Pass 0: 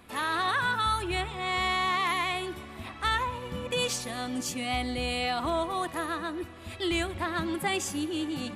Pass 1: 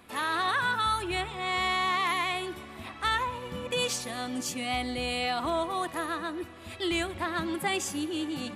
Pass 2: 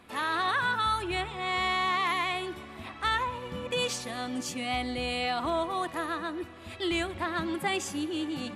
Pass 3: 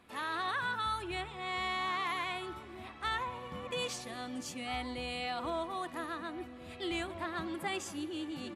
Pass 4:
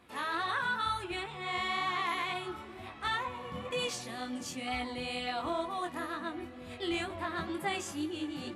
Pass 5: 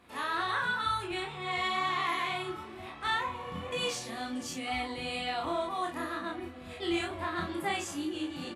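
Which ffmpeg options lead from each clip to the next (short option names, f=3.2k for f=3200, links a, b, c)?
-af "lowshelf=f=100:g=-7.5"
-af "highshelf=f=8.5k:g=-8"
-filter_complex "[0:a]asplit=2[a][b];[b]adelay=1633,volume=-10dB,highshelf=f=4k:g=-36.7[c];[a][c]amix=inputs=2:normalize=0,volume=-7dB"
-af "flanger=delay=19.5:depth=4.2:speed=2.1,volume=5dB"
-filter_complex "[0:a]asplit=2[a][b];[b]adelay=35,volume=-3dB[c];[a][c]amix=inputs=2:normalize=0"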